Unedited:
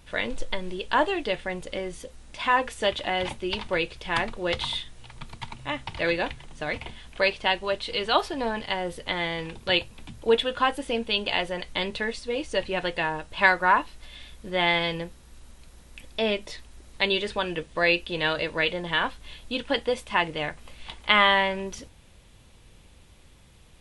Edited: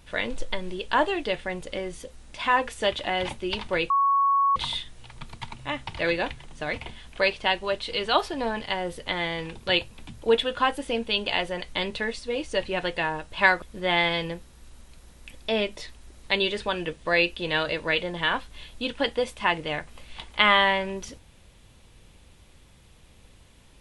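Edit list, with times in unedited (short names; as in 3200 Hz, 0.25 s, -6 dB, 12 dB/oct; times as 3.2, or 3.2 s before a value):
3.9–4.56 bleep 1110 Hz -18 dBFS
13.62–14.32 cut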